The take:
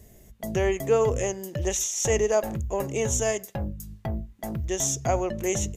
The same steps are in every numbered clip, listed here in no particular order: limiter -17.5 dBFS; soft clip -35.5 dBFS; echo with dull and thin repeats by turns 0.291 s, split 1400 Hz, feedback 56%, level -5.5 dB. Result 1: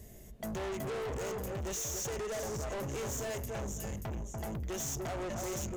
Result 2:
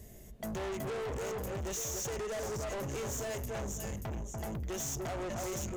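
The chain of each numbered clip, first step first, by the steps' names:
limiter > echo with dull and thin repeats by turns > soft clip; echo with dull and thin repeats by turns > limiter > soft clip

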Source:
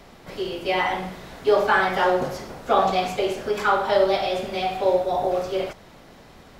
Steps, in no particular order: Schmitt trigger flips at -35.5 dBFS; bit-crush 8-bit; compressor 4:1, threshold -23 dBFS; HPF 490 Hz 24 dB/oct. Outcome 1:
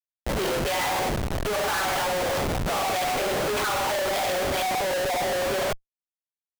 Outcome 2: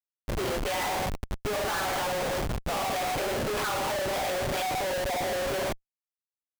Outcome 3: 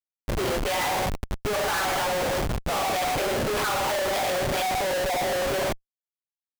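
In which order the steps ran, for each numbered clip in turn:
bit-crush > HPF > Schmitt trigger > compressor; HPF > compressor > bit-crush > Schmitt trigger; HPF > bit-crush > Schmitt trigger > compressor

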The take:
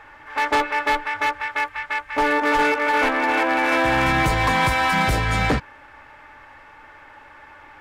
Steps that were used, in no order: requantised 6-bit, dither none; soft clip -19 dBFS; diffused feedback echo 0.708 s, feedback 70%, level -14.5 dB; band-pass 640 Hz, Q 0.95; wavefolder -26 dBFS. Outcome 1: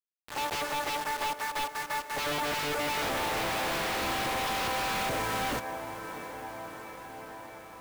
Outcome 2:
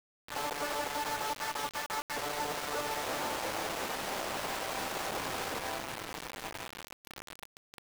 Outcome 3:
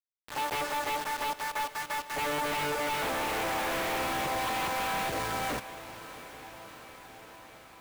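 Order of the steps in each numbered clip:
band-pass > soft clip > requantised > diffused feedback echo > wavefolder; soft clip > diffused feedback echo > wavefolder > band-pass > requantised; soft clip > band-pass > requantised > wavefolder > diffused feedback echo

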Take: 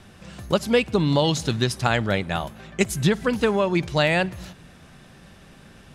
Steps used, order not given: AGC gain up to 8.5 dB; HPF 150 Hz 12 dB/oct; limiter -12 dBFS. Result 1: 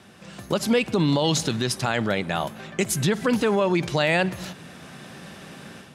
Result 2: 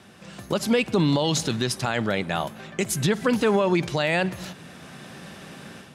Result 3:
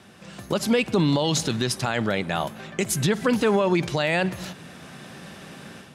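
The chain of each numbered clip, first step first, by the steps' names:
AGC > limiter > HPF; HPF > AGC > limiter; AGC > HPF > limiter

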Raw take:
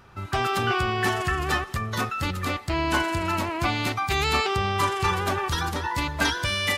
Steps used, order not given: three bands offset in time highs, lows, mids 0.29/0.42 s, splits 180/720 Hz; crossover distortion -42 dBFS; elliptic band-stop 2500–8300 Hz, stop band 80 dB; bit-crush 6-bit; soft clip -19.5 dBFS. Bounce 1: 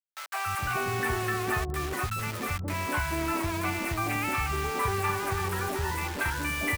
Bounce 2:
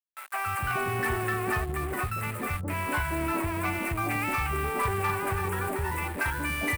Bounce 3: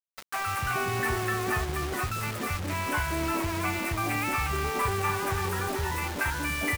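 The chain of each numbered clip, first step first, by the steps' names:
elliptic band-stop > crossover distortion > bit-crush > soft clip > three bands offset in time; bit-crush > elliptic band-stop > crossover distortion > three bands offset in time > soft clip; elliptic band-stop > crossover distortion > three bands offset in time > soft clip > bit-crush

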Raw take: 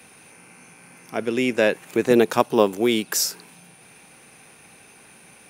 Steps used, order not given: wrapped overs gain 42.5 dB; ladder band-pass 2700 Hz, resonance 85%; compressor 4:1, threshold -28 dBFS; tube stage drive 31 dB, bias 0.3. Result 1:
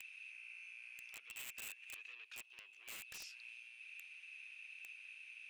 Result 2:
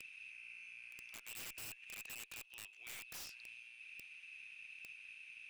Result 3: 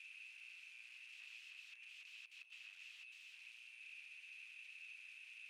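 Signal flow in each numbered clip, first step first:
compressor > tube stage > ladder band-pass > wrapped overs; compressor > ladder band-pass > tube stage > wrapped overs; compressor > wrapped overs > tube stage > ladder band-pass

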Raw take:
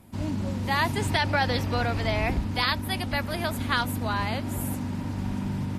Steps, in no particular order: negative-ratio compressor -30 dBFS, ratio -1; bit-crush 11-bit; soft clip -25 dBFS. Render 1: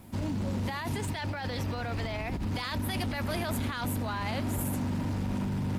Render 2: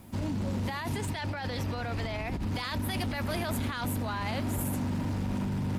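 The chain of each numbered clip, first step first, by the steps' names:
negative-ratio compressor > soft clip > bit-crush; bit-crush > negative-ratio compressor > soft clip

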